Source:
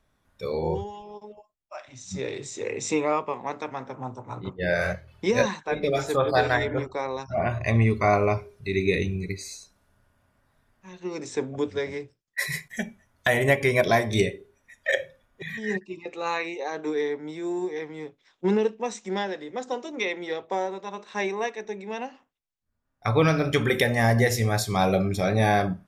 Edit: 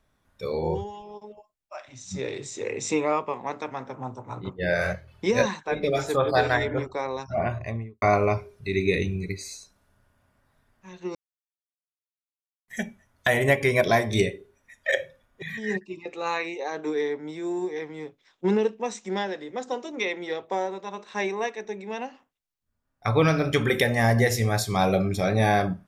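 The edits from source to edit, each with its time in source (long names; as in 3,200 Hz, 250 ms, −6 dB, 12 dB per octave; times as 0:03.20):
0:07.33–0:08.02: fade out and dull
0:11.15–0:12.68: silence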